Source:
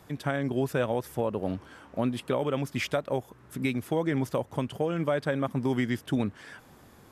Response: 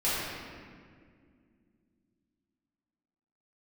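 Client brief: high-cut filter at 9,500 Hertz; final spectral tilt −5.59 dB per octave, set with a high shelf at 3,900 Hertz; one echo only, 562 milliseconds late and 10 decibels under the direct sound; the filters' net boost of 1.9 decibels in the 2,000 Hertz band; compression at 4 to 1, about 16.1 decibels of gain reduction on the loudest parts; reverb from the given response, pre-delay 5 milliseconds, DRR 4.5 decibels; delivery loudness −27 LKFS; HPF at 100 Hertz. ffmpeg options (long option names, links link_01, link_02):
-filter_complex "[0:a]highpass=100,lowpass=9500,equalizer=frequency=2000:width_type=o:gain=3.5,highshelf=frequency=3900:gain=-5,acompressor=threshold=-43dB:ratio=4,aecho=1:1:562:0.316,asplit=2[link_01][link_02];[1:a]atrim=start_sample=2205,adelay=5[link_03];[link_02][link_03]afir=irnorm=-1:irlink=0,volume=-16dB[link_04];[link_01][link_04]amix=inputs=2:normalize=0,volume=16.5dB"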